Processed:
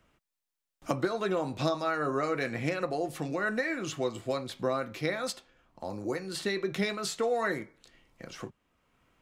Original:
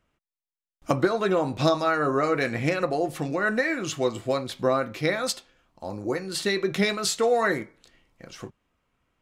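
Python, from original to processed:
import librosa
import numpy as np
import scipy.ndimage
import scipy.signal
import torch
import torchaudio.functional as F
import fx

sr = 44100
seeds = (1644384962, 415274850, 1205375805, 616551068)

y = fx.band_squash(x, sr, depth_pct=40)
y = y * 10.0 ** (-6.5 / 20.0)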